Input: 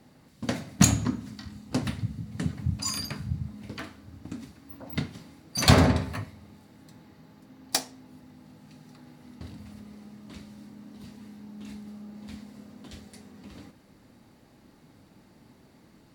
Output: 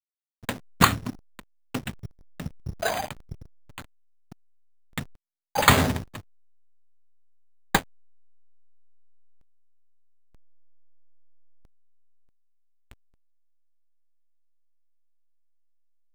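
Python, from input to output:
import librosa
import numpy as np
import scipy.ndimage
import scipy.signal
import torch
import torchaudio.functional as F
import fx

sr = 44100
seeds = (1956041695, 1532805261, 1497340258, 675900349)

y = fx.peak_eq(x, sr, hz=4400.0, db=12.5, octaves=2.6)
y = fx.backlash(y, sr, play_db=-20.5)
y = np.repeat(y[::8], 8)[:len(y)]
y = y * 10.0 ** (-4.0 / 20.0)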